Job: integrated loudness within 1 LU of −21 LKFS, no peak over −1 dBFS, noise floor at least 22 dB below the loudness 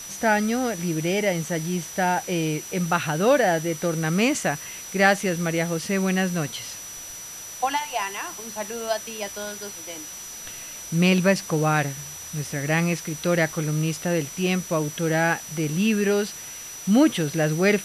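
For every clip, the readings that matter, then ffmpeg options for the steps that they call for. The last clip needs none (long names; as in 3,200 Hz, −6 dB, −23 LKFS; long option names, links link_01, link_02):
interfering tone 5,900 Hz; level of the tone −37 dBFS; background noise floor −38 dBFS; target noise floor −46 dBFS; integrated loudness −24.0 LKFS; sample peak −5.0 dBFS; target loudness −21.0 LKFS
→ -af "bandreject=frequency=5900:width=30"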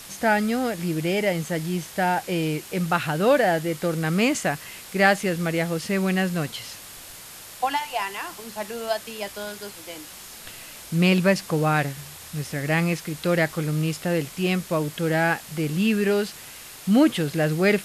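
interfering tone none found; background noise floor −42 dBFS; target noise floor −46 dBFS
→ -af "afftdn=noise_reduction=6:noise_floor=-42"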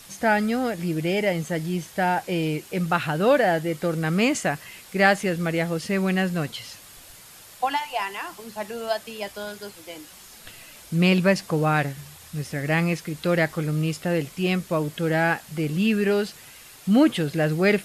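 background noise floor −47 dBFS; integrated loudness −24.0 LKFS; sample peak −5.0 dBFS; target loudness −21.0 LKFS
→ -af "volume=3dB"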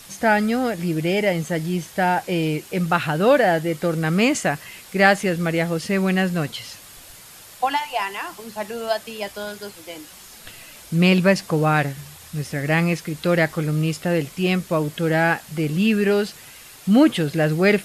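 integrated loudness −21.0 LKFS; sample peak −2.0 dBFS; background noise floor −44 dBFS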